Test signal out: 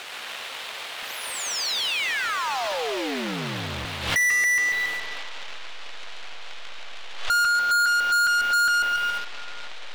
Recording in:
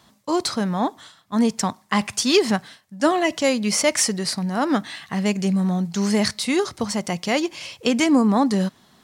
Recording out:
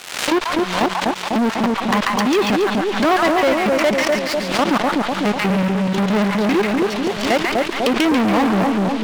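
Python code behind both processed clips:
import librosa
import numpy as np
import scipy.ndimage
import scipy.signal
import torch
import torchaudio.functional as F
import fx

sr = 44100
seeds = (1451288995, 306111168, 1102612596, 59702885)

y = fx.delta_hold(x, sr, step_db=-23.5)
y = fx.level_steps(y, sr, step_db=21)
y = scipy.signal.sosfilt(scipy.signal.butter(2, 4800.0, 'lowpass', fs=sr, output='sos'), y)
y = fx.dmg_noise_band(y, sr, seeds[0], low_hz=450.0, high_hz=3700.0, level_db=-52.0)
y = fx.high_shelf(y, sr, hz=3300.0, db=5.0)
y = fx.env_lowpass_down(y, sr, base_hz=2000.0, full_db=-23.5)
y = fx.echo_split(y, sr, split_hz=940.0, low_ms=248, high_ms=140, feedback_pct=52, wet_db=-4)
y = fx.leveller(y, sr, passes=5)
y = fx.low_shelf(y, sr, hz=160.0, db=-11.0)
y = fx.pre_swell(y, sr, db_per_s=74.0)
y = y * librosa.db_to_amplitude(-4.0)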